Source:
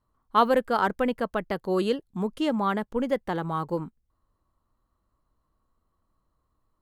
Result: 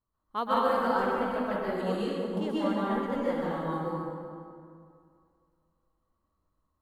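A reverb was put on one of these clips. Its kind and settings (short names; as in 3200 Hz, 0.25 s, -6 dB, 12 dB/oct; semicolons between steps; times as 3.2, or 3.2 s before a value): plate-style reverb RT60 2.3 s, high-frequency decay 0.6×, pre-delay 0.11 s, DRR -8 dB; gain -12 dB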